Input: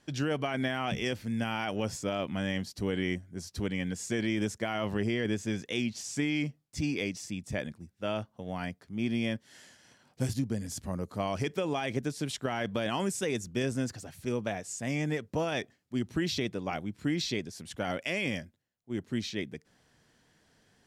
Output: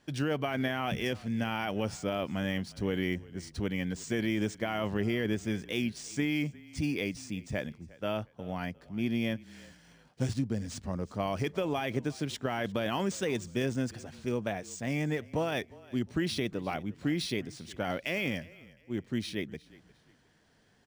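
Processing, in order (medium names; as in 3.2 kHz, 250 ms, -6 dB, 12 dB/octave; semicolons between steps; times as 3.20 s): frequency-shifting echo 356 ms, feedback 31%, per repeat -31 Hz, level -21.5 dB; decimation joined by straight lines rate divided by 3×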